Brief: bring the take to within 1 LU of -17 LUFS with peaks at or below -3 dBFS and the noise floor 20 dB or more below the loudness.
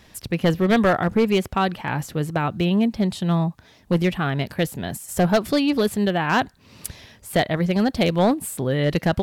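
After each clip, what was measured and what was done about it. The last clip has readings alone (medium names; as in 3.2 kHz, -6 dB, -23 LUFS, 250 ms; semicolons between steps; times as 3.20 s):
clipped samples 1.3%; clipping level -12.0 dBFS; loudness -22.0 LUFS; peak level -12.0 dBFS; loudness target -17.0 LUFS
-> clip repair -12 dBFS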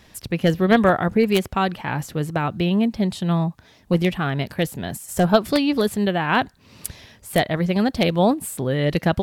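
clipped samples 0.0%; loudness -21.0 LUFS; peak level -3.0 dBFS; loudness target -17.0 LUFS
-> trim +4 dB; peak limiter -3 dBFS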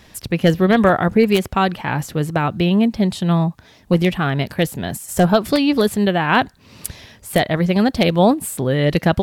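loudness -17.5 LUFS; peak level -3.0 dBFS; noise floor -49 dBFS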